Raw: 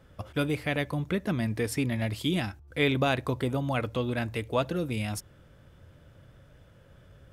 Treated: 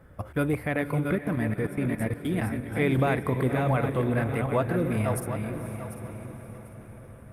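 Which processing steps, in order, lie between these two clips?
backward echo that repeats 372 ms, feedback 51%, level -6.5 dB; high-order bell 4.4 kHz -12 dB; in parallel at +2 dB: peak limiter -21.5 dBFS, peak gain reduction 9 dB; 1.15–2.45 s: on the sum: level held to a coarse grid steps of 23 dB; on a send: echo that smears into a reverb 510 ms, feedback 57%, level -12 dB; on the sum: trim -3.5 dB; Opus 48 kbps 48 kHz

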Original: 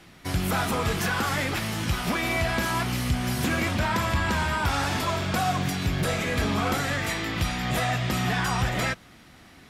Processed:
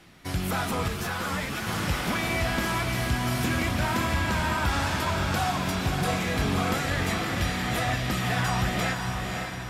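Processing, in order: echo that smears into a reverb 551 ms, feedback 50%, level -4 dB; 0.88–1.67 s: three-phase chorus; trim -2.5 dB

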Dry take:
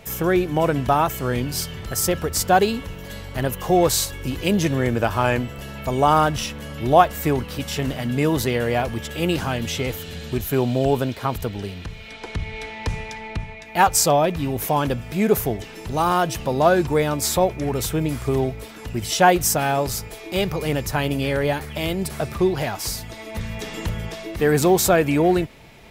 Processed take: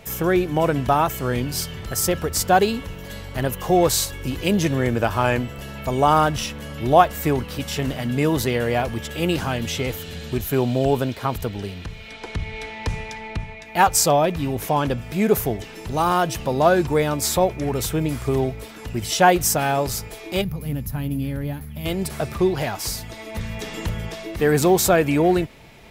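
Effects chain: 14.55–14.98 s: treble shelf 11 kHz -9.5 dB; 20.42–21.86 s: time-frequency box 290–10000 Hz -14 dB

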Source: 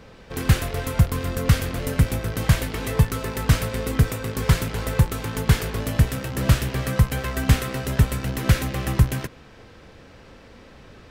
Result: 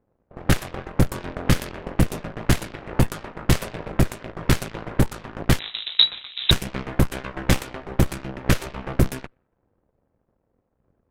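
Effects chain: Chebyshev shaper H 2 -8 dB, 3 -29 dB, 6 -7 dB, 7 -19 dB, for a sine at -3.5 dBFS; level-controlled noise filter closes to 770 Hz, open at -10.5 dBFS; 5.59–6.51 s: frequency inversion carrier 3.9 kHz; trim -5 dB

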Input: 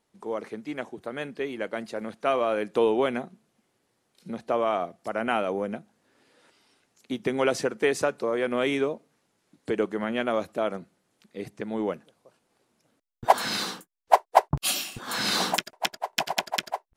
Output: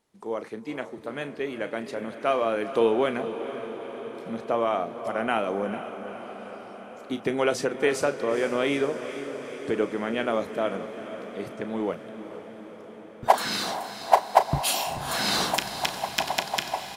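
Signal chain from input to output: doubling 35 ms -12.5 dB; on a send: echo that smears into a reverb 459 ms, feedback 70%, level -11 dB

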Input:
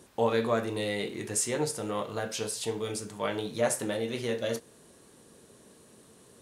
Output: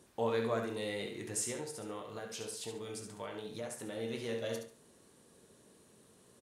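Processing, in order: 1.51–3.97 s: compression, threshold -32 dBFS, peak gain reduction 10.5 dB; feedback delay 70 ms, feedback 28%, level -7 dB; trim -7.5 dB

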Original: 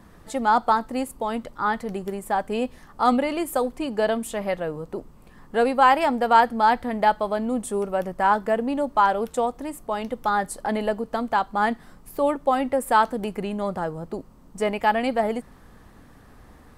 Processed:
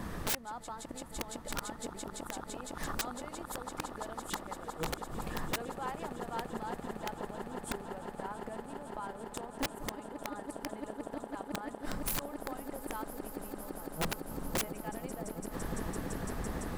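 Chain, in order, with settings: inverted gate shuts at -22 dBFS, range -34 dB; echo with a slow build-up 169 ms, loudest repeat 8, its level -15.5 dB; integer overflow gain 35 dB; trim +9.5 dB

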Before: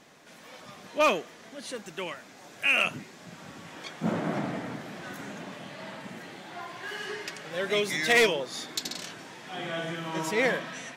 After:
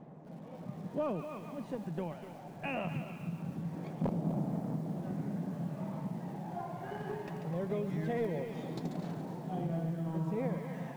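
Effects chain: in parallel at -7.5 dB: bit crusher 5-bit; on the sum: peaking EQ 160 Hz +13 dB 0.75 oct; on a send: feedback echo behind a high-pass 141 ms, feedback 48%, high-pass 1.5 kHz, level -7 dB; on the sum: phaser 0.22 Hz, delay 1.4 ms, feedback 29%; integer overflow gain 7.5 dB; FFT filter 830 Hz 0 dB, 1.4 kHz -14 dB, 5.4 kHz -28 dB; compression 4:1, threshold -34 dBFS, peak gain reduction 18 dB; bit-crushed delay 250 ms, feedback 35%, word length 9-bit, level -10 dB

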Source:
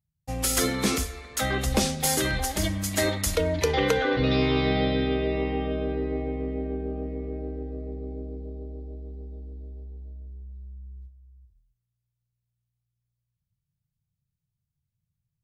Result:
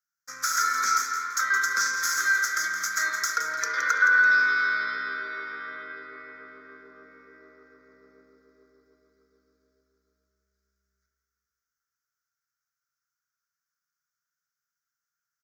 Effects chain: in parallel at +1.5 dB: peak limiter -17 dBFS, peak gain reduction 7 dB; on the sum: resonant high shelf 4.7 kHz +8.5 dB, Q 3; compression 1.5:1, threshold -24 dBFS, peak gain reduction 6.5 dB; Chebyshev shaper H 8 -27 dB, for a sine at 0 dBFS; resonant high-pass 1.4 kHz, resonance Q 9.1; tilt EQ -2 dB/octave; static phaser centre 2.8 kHz, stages 6; on a send: feedback delay 168 ms, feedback 32%, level -9 dB; on the sum: spring tank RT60 4 s, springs 35 ms, chirp 80 ms, DRR 3.5 dB; trim -3.5 dB

